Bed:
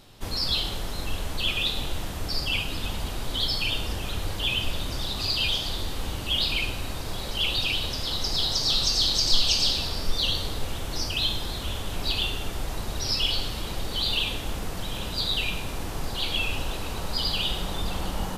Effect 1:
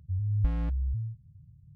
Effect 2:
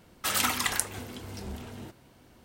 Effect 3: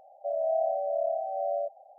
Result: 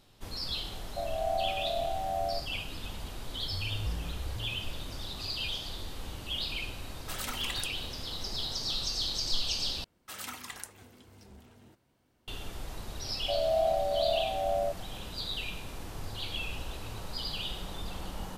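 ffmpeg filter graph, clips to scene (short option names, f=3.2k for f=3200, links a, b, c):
-filter_complex "[3:a]asplit=2[a][b];[1:a]asplit=2[c][d];[2:a]asplit=2[e][f];[0:a]volume=-9.5dB[g];[a]asplit=2[h][i];[i]adelay=13,volume=-6dB[j];[h][j]amix=inputs=2:normalize=0[k];[c]aeval=exprs='val(0)+0.5*0.0119*sgn(val(0))':c=same[l];[d]acompressor=threshold=-45dB:ratio=6:attack=3.2:release=140:knee=1:detection=peak[m];[g]asplit=2[n][o];[n]atrim=end=9.844[p];[f]atrim=end=2.44,asetpts=PTS-STARTPTS,volume=-14.5dB[q];[o]atrim=start=12.276[r];[k]atrim=end=1.98,asetpts=PTS-STARTPTS,volume=-3dB,afade=t=in:d=0.004:c=hsin,afade=t=out:st=1.976:d=0.004:c=hsin,adelay=720[s];[l]atrim=end=1.75,asetpts=PTS-STARTPTS,volume=-10dB,afade=t=in:d=0.004:c=hsin,afade=t=out:st=1.746:d=0.004:c=hsin,adelay=3420[t];[e]atrim=end=2.44,asetpts=PTS-STARTPTS,volume=-11.5dB,afade=t=in:d=0.004:c=hsin,afade=t=out:st=2.436:d=0.004:c=hsin,adelay=6840[u];[b]atrim=end=1.98,asetpts=PTS-STARTPTS,afade=t=in:d=0.004:c=hsin,afade=t=out:st=1.976:d=0.004:c=hsin,adelay=13040[v];[m]atrim=end=1.75,asetpts=PTS-STARTPTS,volume=-2.5dB,afade=t=in:d=0.004:c=hsin,afade=t=out:st=1.746:d=0.004:c=hsin,adelay=15900[w];[p][q]acrossfade=d=0.004:c1=hsin:c2=hsin[x];[x][r]acrossfade=d=0.004:c1=hsin:c2=hsin[y];[y][s][t][u][v][w]amix=inputs=6:normalize=0"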